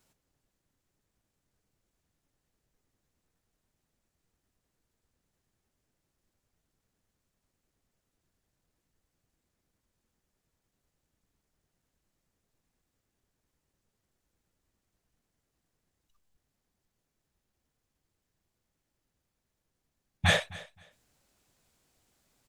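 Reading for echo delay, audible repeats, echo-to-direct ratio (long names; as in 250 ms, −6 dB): 262 ms, 2, −20.0 dB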